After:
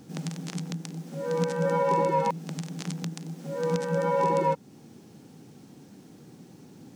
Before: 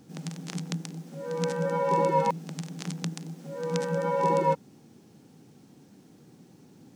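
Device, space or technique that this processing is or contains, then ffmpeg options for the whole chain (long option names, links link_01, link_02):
soft clipper into limiter: -af "asoftclip=type=tanh:threshold=-11.5dB,alimiter=limit=-20.5dB:level=0:latency=1:release=329,volume=4.5dB"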